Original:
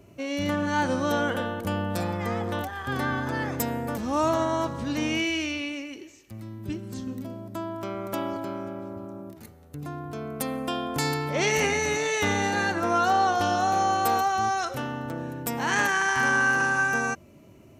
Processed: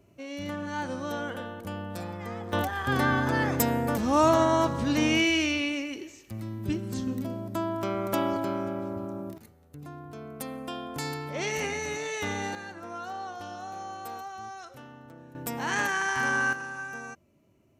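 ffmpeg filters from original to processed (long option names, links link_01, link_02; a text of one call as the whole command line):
ffmpeg -i in.wav -af "asetnsamples=nb_out_samples=441:pad=0,asendcmd='2.53 volume volume 3dB;9.38 volume volume -7dB;12.55 volume volume -15.5dB;15.35 volume volume -4dB;16.53 volume volume -13.5dB',volume=-8dB" out.wav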